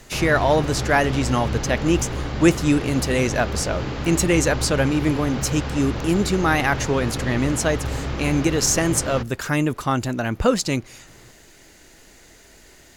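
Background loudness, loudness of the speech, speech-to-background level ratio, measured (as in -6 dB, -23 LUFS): -28.0 LUFS, -21.5 LUFS, 6.5 dB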